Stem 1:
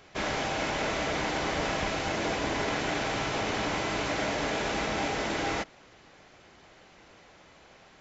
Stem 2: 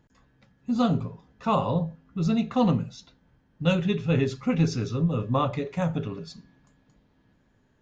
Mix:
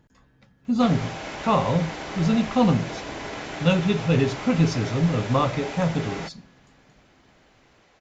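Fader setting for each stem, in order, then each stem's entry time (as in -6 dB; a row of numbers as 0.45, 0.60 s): -4.0, +3.0 dB; 0.65, 0.00 s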